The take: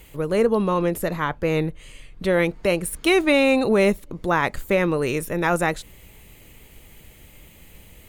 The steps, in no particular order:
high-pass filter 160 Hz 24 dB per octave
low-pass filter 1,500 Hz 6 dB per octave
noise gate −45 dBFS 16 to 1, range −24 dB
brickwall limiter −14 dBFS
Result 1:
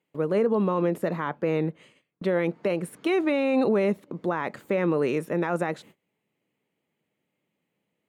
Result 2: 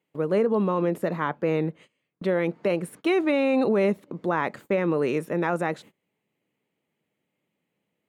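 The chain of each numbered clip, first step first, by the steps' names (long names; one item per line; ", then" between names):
high-pass filter, then brickwall limiter, then noise gate, then low-pass filter
low-pass filter, then brickwall limiter, then high-pass filter, then noise gate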